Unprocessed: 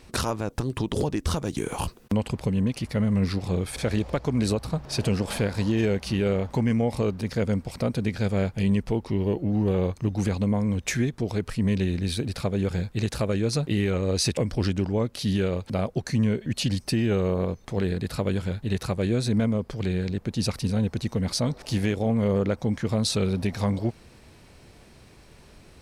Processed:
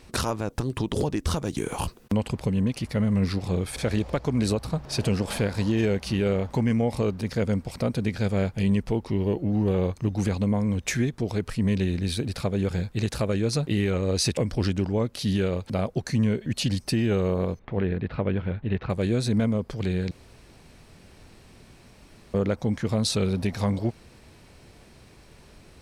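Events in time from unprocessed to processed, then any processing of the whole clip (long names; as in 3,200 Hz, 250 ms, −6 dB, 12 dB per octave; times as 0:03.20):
0:17.59–0:18.90: low-pass filter 2,800 Hz 24 dB per octave
0:20.11–0:22.34: fill with room tone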